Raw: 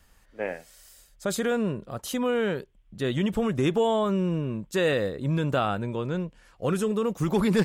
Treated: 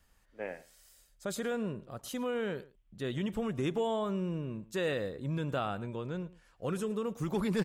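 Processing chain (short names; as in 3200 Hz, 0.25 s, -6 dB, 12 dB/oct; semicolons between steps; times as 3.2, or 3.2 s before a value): outdoor echo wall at 19 m, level -19 dB; gain -8.5 dB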